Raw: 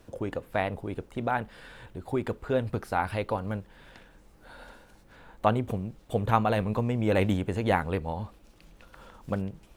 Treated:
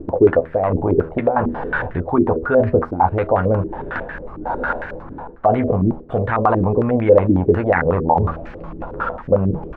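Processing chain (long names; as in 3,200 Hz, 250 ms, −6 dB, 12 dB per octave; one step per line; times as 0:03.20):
double-tracking delay 12 ms −6.5 dB
hum removal 80.16 Hz, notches 8
reversed playback
downward compressor 5 to 1, threshold −38 dBFS, peak gain reduction 19 dB
reversed playback
boost into a limiter +31.5 dB
low-pass on a step sequencer 11 Hz 320–1,800 Hz
level −9.5 dB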